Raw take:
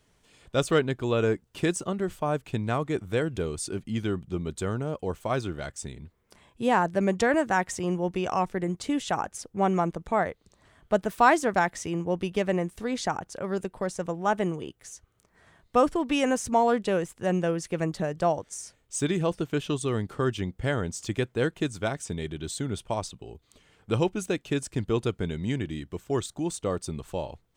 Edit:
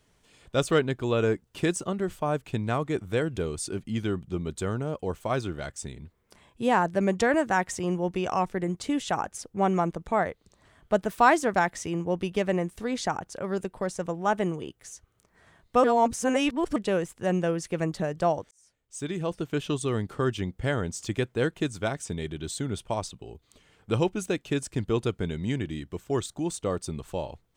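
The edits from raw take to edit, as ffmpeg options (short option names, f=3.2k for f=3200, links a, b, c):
-filter_complex "[0:a]asplit=4[a][b][c][d];[a]atrim=end=15.842[e];[b]atrim=start=15.838:end=16.762,asetpts=PTS-STARTPTS,areverse[f];[c]atrim=start=16.758:end=18.51,asetpts=PTS-STARTPTS,afade=t=out:st=1.748:d=0.004:c=hsin[g];[d]atrim=start=18.51,asetpts=PTS-STARTPTS,afade=t=in:d=1.15[h];[e][f]acrossfade=d=0.004:c1=hsin:c2=hsin[i];[g][h]concat=n=2:v=0:a=1[j];[i][j]acrossfade=d=0.004:c1=hsin:c2=hsin"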